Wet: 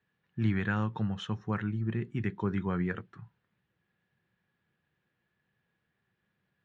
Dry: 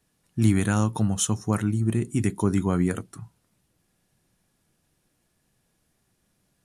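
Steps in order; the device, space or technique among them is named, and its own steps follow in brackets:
guitar cabinet (loudspeaker in its box 94–3,400 Hz, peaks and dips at 280 Hz −9 dB, 650 Hz −6 dB, 1,700 Hz +8 dB)
level −6 dB

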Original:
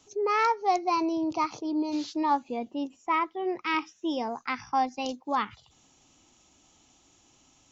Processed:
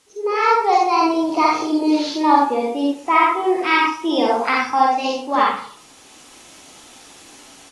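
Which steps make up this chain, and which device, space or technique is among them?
filmed off a television (band-pass filter 260–6,400 Hz; parametric band 470 Hz +5 dB 0.2 octaves; convolution reverb RT60 0.50 s, pre-delay 42 ms, DRR −3 dB; white noise bed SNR 31 dB; automatic gain control gain up to 13 dB; level −1 dB; AAC 32 kbit/s 24,000 Hz)

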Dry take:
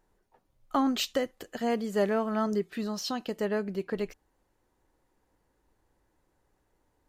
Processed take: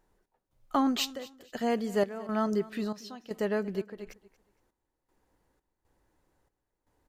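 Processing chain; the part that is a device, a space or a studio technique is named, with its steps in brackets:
trance gate with a delay (gate pattern "xx..xxxxx...xx" 118 BPM −12 dB; repeating echo 232 ms, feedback 27%, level −19.5 dB)

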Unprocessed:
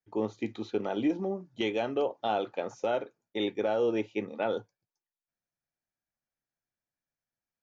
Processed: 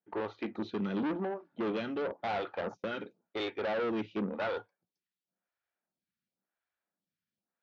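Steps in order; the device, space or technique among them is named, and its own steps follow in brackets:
0:02.61–0:03.03: noise gate −42 dBFS, range −20 dB
vibe pedal into a guitar amplifier (phaser with staggered stages 0.94 Hz; tube saturation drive 37 dB, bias 0.45; loudspeaker in its box 94–4,300 Hz, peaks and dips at 130 Hz −7 dB, 190 Hz +9 dB, 1,400 Hz +4 dB)
level +6.5 dB

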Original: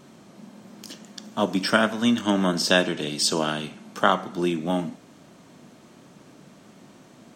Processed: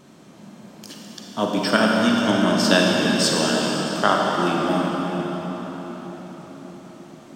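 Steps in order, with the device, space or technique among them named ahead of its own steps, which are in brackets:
cathedral (convolution reverb RT60 5.5 s, pre-delay 35 ms, DRR −2 dB)

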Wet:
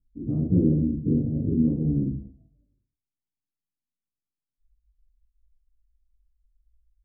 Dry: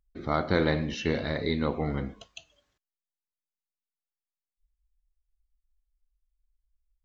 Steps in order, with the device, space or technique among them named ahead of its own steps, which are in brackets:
0:01.07–0:01.52: Chebyshev low-pass filter 890 Hz, order 8
next room (low-pass filter 290 Hz 24 dB per octave; convolution reverb RT60 0.45 s, pre-delay 4 ms, DRR −8 dB)

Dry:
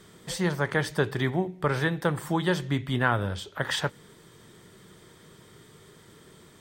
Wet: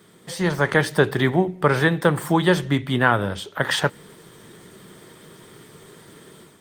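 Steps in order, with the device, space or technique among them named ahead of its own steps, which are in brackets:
video call (high-pass filter 130 Hz 12 dB per octave; automatic gain control gain up to 7.5 dB; level +1.5 dB; Opus 32 kbit/s 48,000 Hz)

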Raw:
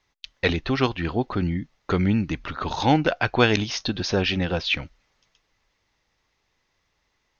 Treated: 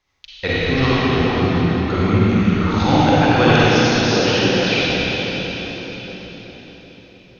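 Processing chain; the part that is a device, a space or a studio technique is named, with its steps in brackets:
0:03.53–0:04.78: high-pass filter 200 Hz 12 dB per octave
cathedral (convolution reverb RT60 5.0 s, pre-delay 37 ms, DRR −10.5 dB)
level −2.5 dB

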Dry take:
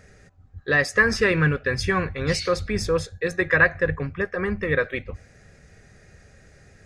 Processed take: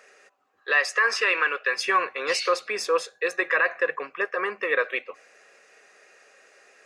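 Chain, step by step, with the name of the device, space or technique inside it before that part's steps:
laptop speaker (high-pass filter 410 Hz 24 dB per octave; parametric band 1,100 Hz +8.5 dB 0.38 octaves; parametric band 2,700 Hz +9.5 dB 0.26 octaves; brickwall limiter −12 dBFS, peak gain reduction 9 dB)
0:00.64–0:01.77: meter weighting curve A

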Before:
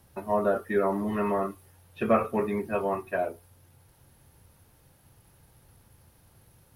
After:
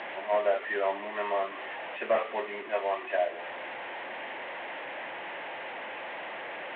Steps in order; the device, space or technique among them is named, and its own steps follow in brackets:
digital answering machine (band-pass filter 390–3,200 Hz; linear delta modulator 16 kbit/s, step −32 dBFS; loudspeaker in its box 400–4,300 Hz, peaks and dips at 440 Hz −5 dB, 630 Hz +4 dB, 1,300 Hz −7 dB, 1,900 Hz +5 dB)

